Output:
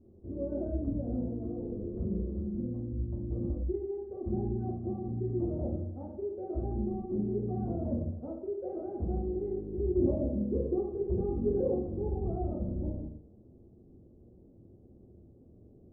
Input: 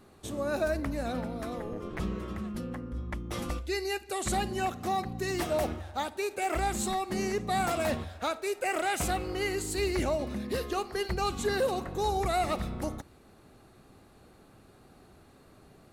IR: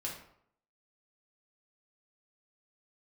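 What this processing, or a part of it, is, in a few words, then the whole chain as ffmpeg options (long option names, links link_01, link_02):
next room: -filter_complex "[0:a]lowpass=frequency=470:width=0.5412,lowpass=frequency=470:width=1.3066[link_01];[1:a]atrim=start_sample=2205[link_02];[link_01][link_02]afir=irnorm=-1:irlink=0,asettb=1/sr,asplit=3[link_03][link_04][link_05];[link_03]atrim=end=10.014[link_06];[link_04]atrim=start=10.01:end=11.79,asetpts=PTS-STARTPTS,afade=type=in:duration=0.004:curve=qsin,afade=type=out:start_time=1.776:duration=0.004:curve=qsin,equalizer=frequency=480:width_type=o:width=2.7:gain=3.5[link_07];[link_05]atrim=start=11.786[link_08];[link_06][link_07]acrossfade=duration=0.004:curve1=hsin:curve2=qsin[link_09];[link_09][link_08]acrossfade=duration=0.004:curve1=qsin:curve2=hsin"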